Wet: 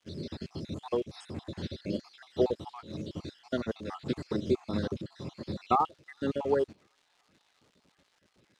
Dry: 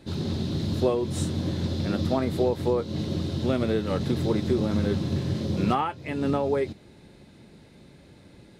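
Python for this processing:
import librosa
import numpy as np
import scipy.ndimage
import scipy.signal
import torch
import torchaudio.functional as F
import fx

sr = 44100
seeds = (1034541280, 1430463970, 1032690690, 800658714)

p1 = fx.spec_dropout(x, sr, seeds[0], share_pct=62)
p2 = fx.dmg_crackle(p1, sr, seeds[1], per_s=320.0, level_db=-42.0)
p3 = scipy.signal.sosfilt(scipy.signal.butter(2, 6500.0, 'lowpass', fs=sr, output='sos'), p2)
p4 = fx.low_shelf(p3, sr, hz=240.0, db=-10.0)
p5 = p4 + fx.echo_wet_highpass(p4, sr, ms=368, feedback_pct=75, hz=2200.0, wet_db=-19.5, dry=0)
p6 = fx.upward_expand(p5, sr, threshold_db=-49.0, expansion=1.5)
y = p6 * 10.0 ** (2.5 / 20.0)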